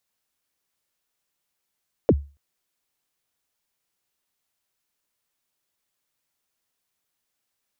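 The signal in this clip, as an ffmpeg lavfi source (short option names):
-f lavfi -i "aevalsrc='0.355*pow(10,-3*t/0.31)*sin(2*PI*(590*0.048/log(71/590)*(exp(log(71/590)*min(t,0.048)/0.048)-1)+71*max(t-0.048,0)))':d=0.28:s=44100"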